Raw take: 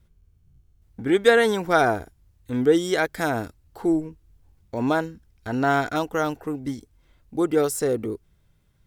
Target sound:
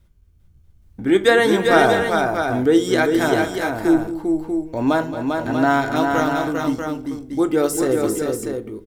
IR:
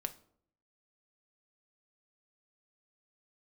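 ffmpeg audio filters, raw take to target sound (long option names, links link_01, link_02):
-filter_complex "[0:a]aecho=1:1:221|397|639:0.211|0.596|0.447[link_01];[1:a]atrim=start_sample=2205,asetrate=61740,aresample=44100[link_02];[link_01][link_02]afir=irnorm=-1:irlink=0,volume=7dB"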